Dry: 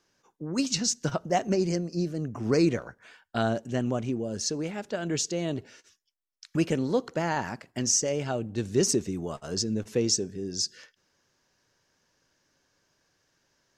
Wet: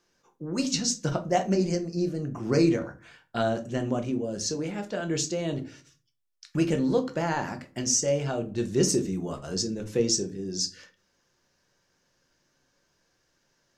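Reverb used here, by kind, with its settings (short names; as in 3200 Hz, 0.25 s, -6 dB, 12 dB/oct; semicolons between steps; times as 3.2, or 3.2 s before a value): shoebox room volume 150 m³, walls furnished, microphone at 0.85 m; gain -1 dB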